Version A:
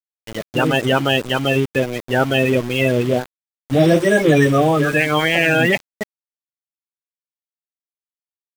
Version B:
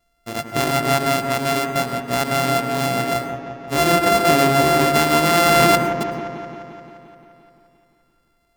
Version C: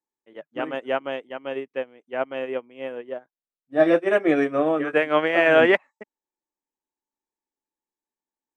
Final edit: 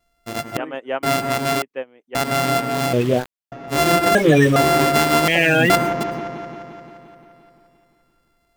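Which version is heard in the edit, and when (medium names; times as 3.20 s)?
B
0.57–1.03 s: from C
1.62–2.15 s: from C
2.93–3.52 s: from A
4.15–4.56 s: from A
5.28–5.70 s: from A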